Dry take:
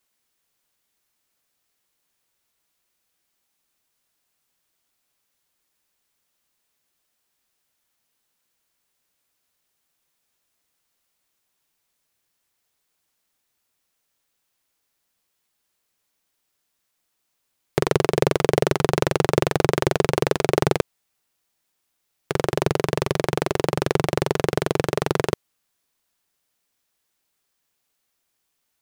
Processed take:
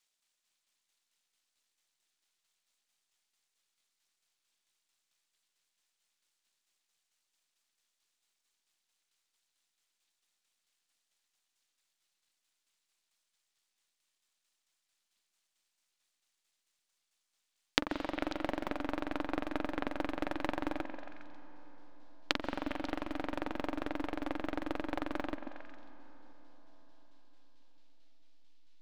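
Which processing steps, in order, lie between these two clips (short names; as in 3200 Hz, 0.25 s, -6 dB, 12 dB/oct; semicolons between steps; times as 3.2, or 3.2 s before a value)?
treble ducked by the level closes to 1400 Hz, closed at -22 dBFS; in parallel at -6.5 dB: backlash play -33.5 dBFS; on the sum: resonant low shelf 240 Hz +10.5 dB, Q 1.5; compressor, threshold -18 dBFS, peak gain reduction 14.5 dB; ladder low-pass 4900 Hz, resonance 35%; full-wave rectifier; tilt +3.5 dB/oct; tremolo saw down 4.5 Hz, depth 50%; delay with a stepping band-pass 0.136 s, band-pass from 280 Hz, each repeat 1.4 oct, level -4.5 dB; on a send at -14 dB: reverb RT60 5.3 s, pre-delay 0.105 s; on the sum: gain +2.5 dB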